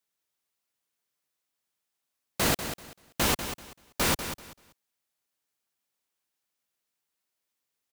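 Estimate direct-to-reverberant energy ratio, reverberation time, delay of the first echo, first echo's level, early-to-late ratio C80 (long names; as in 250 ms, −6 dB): no reverb audible, no reverb audible, 193 ms, −10.0 dB, no reverb audible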